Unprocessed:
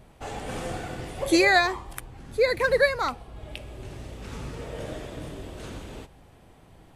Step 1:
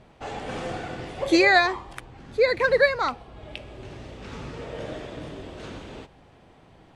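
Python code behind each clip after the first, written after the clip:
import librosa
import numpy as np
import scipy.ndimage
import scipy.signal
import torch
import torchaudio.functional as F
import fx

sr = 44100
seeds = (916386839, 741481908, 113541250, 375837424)

y = scipy.signal.sosfilt(scipy.signal.butter(2, 5300.0, 'lowpass', fs=sr, output='sos'), x)
y = fx.low_shelf(y, sr, hz=90.0, db=-9.0)
y = y * 10.0 ** (2.0 / 20.0)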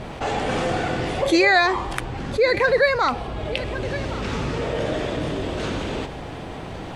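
y = x + 10.0 ** (-23.5 / 20.0) * np.pad(x, (int(1111 * sr / 1000.0), 0))[:len(x)]
y = fx.env_flatten(y, sr, amount_pct=50)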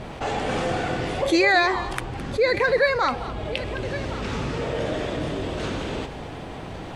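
y = x + 10.0 ** (-15.0 / 20.0) * np.pad(x, (int(214 * sr / 1000.0), 0))[:len(x)]
y = y * 10.0 ** (-2.0 / 20.0)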